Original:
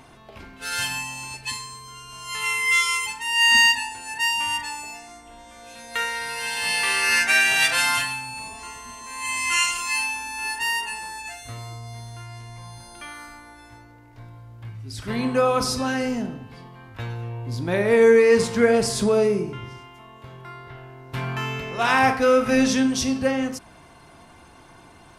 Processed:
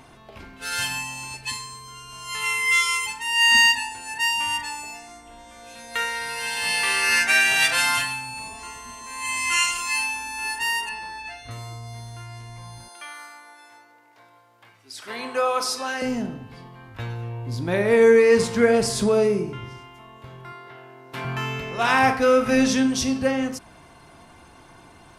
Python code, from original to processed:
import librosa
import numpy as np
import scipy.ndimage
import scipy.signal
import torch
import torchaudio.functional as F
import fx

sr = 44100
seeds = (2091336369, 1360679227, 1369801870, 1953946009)

y = fx.savgol(x, sr, points=15, at=(10.89, 11.51))
y = fx.highpass(y, sr, hz=550.0, slope=12, at=(12.88, 16.02))
y = fx.highpass(y, sr, hz=230.0, slope=12, at=(20.52, 21.25))